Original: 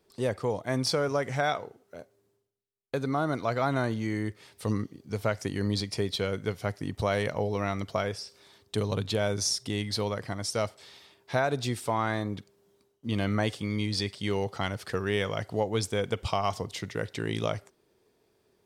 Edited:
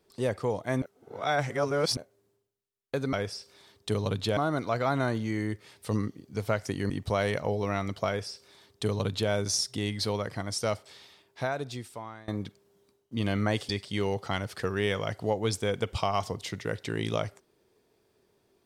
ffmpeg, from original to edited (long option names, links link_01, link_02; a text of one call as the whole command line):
ffmpeg -i in.wav -filter_complex "[0:a]asplit=8[link_01][link_02][link_03][link_04][link_05][link_06][link_07][link_08];[link_01]atrim=end=0.822[link_09];[link_02]atrim=start=0.818:end=1.972,asetpts=PTS-STARTPTS,areverse[link_10];[link_03]atrim=start=1.968:end=3.132[link_11];[link_04]atrim=start=7.988:end=9.232[link_12];[link_05]atrim=start=3.128:end=5.662[link_13];[link_06]atrim=start=6.818:end=12.2,asetpts=PTS-STARTPTS,afade=type=out:start_time=3.992:duration=1.39:silence=0.0630957[link_14];[link_07]atrim=start=12.2:end=13.612,asetpts=PTS-STARTPTS,afade=type=in:duration=0.004:curve=hsin:silence=0.0630957[link_15];[link_08]atrim=start=13.988[link_16];[link_09][link_10]acrossfade=duration=0.004:curve1=hsin:curve2=hsin[link_17];[link_17][link_11]acrossfade=duration=0.004:curve1=hsin:curve2=hsin[link_18];[link_18][link_12]acrossfade=duration=0.004:curve1=hsin:curve2=hsin[link_19];[link_19][link_13]acrossfade=duration=0.004:curve1=hsin:curve2=hsin[link_20];[link_14][link_15]concat=n=2:v=0:a=1[link_21];[link_20][link_21]acrossfade=duration=0.004:curve1=hsin:curve2=hsin[link_22];[link_22][link_16]acrossfade=duration=0.004:curve1=hsin:curve2=hsin" out.wav